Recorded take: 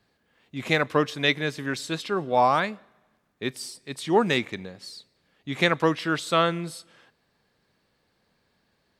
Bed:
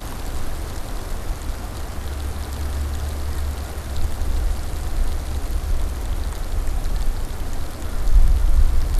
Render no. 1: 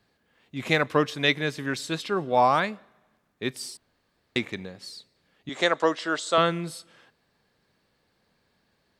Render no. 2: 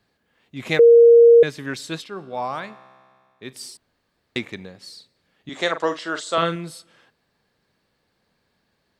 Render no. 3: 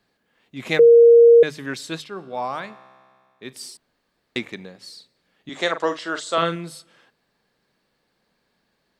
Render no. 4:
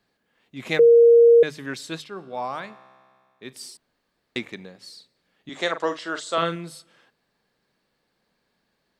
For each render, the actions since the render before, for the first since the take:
3.77–4.36 room tone; 5.49–6.38 speaker cabinet 350–8800 Hz, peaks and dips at 610 Hz +5 dB, 2400 Hz -8 dB, 7300 Hz +6 dB
0.79–1.43 bleep 468 Hz -6.5 dBFS; 2.04–3.53 resonator 65 Hz, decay 2 s; 4.83–6.56 doubler 42 ms -10 dB
bell 88 Hz -11 dB 0.55 oct; notches 50/100/150 Hz
gain -2.5 dB

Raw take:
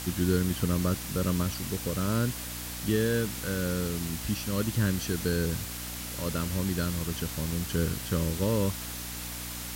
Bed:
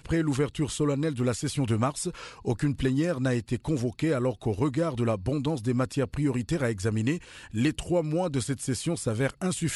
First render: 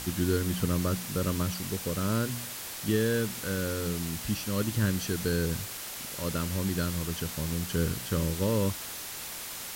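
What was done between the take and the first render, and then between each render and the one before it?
de-hum 60 Hz, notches 5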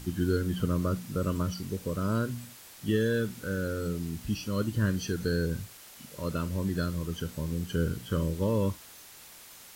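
noise print and reduce 11 dB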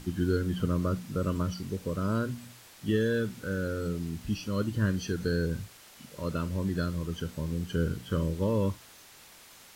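high shelf 7900 Hz -7.5 dB; notches 60/120 Hz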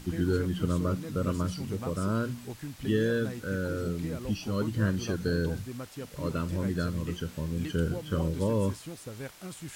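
add bed -13.5 dB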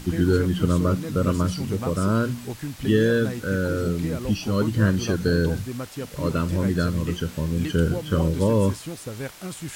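gain +7.5 dB

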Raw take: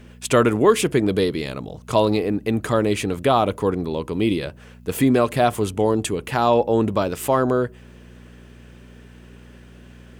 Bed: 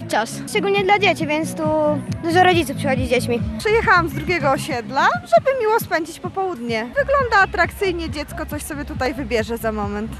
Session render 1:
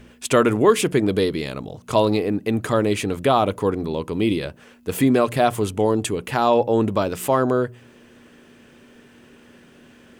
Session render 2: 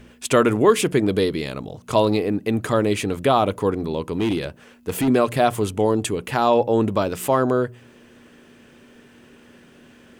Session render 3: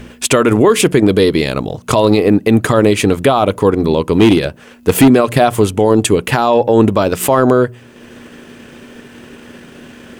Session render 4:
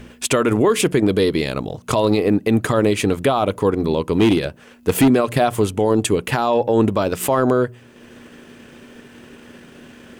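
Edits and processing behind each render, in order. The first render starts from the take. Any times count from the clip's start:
de-hum 60 Hz, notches 3
4.13–5.08 overloaded stage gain 17 dB
transient shaper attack +2 dB, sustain -5 dB; maximiser +13 dB
gain -6 dB

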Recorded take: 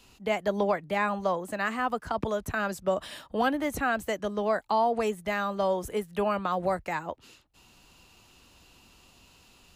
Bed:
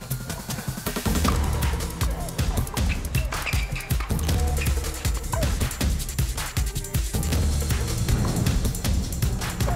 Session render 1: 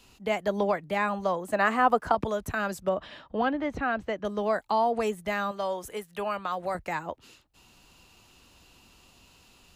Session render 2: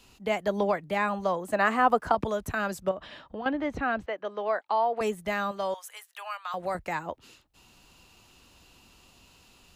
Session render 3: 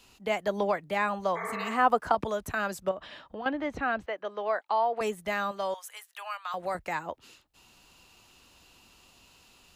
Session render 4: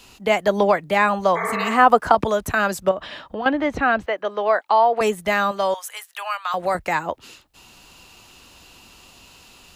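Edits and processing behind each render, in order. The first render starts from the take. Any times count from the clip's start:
1.53–2.15 bell 660 Hz +8.5 dB 2.7 oct; 2.89–4.25 air absorption 210 m; 5.51–6.75 low shelf 490 Hz -10 dB
2.91–3.46 compressor 4:1, threshold -34 dBFS; 4.06–5.01 BPF 460–3300 Hz; 5.74–6.54 Bessel high-pass 1200 Hz, order 6
1.39–1.68 spectral repair 280–2400 Hz after; low shelf 350 Hz -5 dB
gain +10.5 dB; limiter -2 dBFS, peak gain reduction 2 dB

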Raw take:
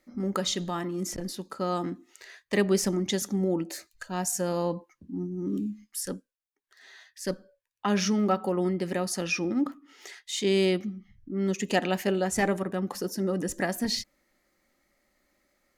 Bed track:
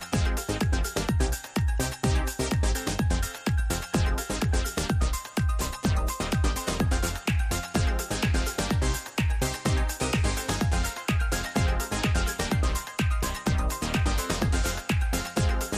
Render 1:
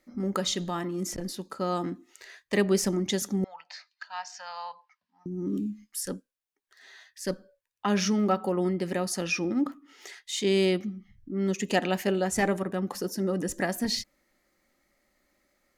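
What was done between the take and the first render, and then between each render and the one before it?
3.44–5.26 elliptic band-pass 820–5000 Hz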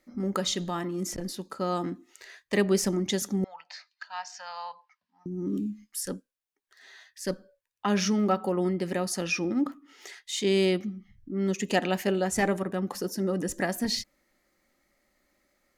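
nothing audible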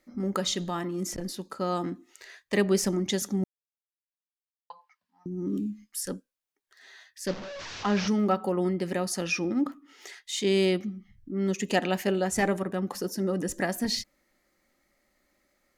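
3.44–4.7 mute; 7.27–8.08 delta modulation 32 kbps, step -33 dBFS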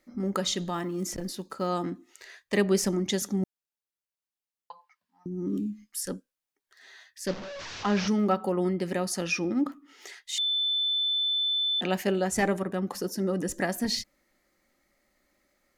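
0.74–1.67 block floating point 7-bit; 10.38–11.81 bleep 3520 Hz -24 dBFS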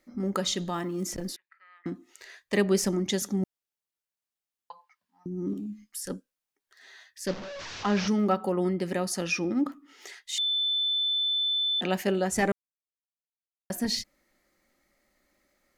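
1.36–1.86 Butterworth band-pass 2000 Hz, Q 4; 5.53–6.1 compressor, threshold -32 dBFS; 12.52–13.7 mute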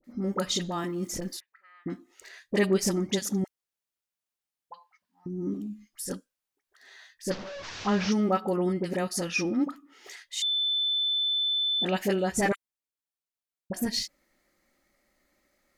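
dispersion highs, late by 42 ms, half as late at 1000 Hz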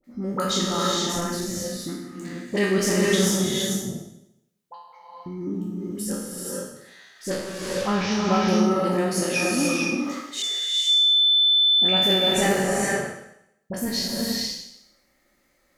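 spectral trails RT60 0.79 s; non-linear reverb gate 0.5 s rising, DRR -1 dB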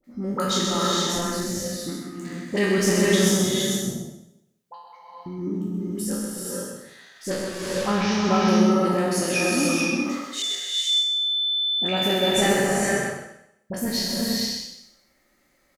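echo 0.128 s -6 dB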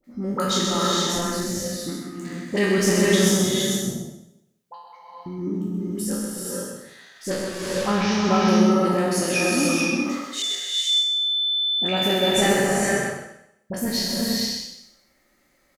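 gain +1 dB

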